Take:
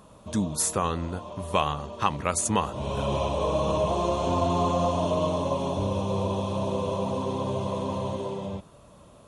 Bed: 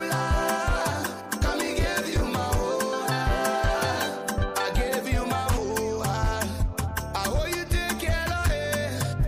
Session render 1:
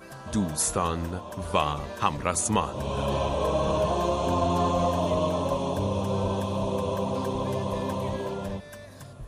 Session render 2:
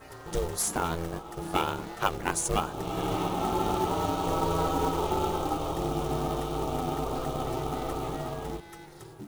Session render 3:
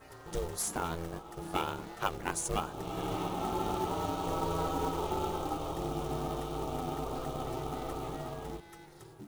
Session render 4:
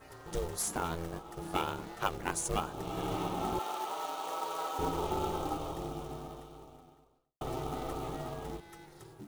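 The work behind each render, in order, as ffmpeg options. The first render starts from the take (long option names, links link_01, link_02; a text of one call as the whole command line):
ffmpeg -i in.wav -i bed.wav -filter_complex "[1:a]volume=-17.5dB[link_01];[0:a][link_01]amix=inputs=2:normalize=0" out.wav
ffmpeg -i in.wav -af "aeval=exprs='val(0)*sin(2*PI*250*n/s)':channel_layout=same,acrusher=bits=4:mode=log:mix=0:aa=0.000001" out.wav
ffmpeg -i in.wav -af "volume=-5.5dB" out.wav
ffmpeg -i in.wav -filter_complex "[0:a]asettb=1/sr,asplit=3[link_01][link_02][link_03];[link_01]atrim=end=3.594[link_04];[link_02]atrim=start=3.59:end=4.79,asetpts=PTS-STARTPTS,afade=type=in:duration=0.004:curve=qsin,afade=type=out:start_time=1.196:duration=0.004:curve=qsin,highpass=670[link_05];[link_03]atrim=start=4.786[link_06];[link_04][link_05]acrossfade=duration=0.004:curve1=hsin:curve2=qsin[link_07];[link_07][link_06]acrossfade=duration=0.004:curve1=qsin:curve2=hsin,asplit=2[link_08][link_09];[link_08]atrim=end=7.41,asetpts=PTS-STARTPTS,afade=type=out:start_time=5.49:duration=1.92:curve=qua[link_10];[link_09]atrim=start=7.41,asetpts=PTS-STARTPTS,afade=type=in:duration=0.004:curve=hsin[link_11];[link_10][link_11]concat=n=2:v=0:a=1" out.wav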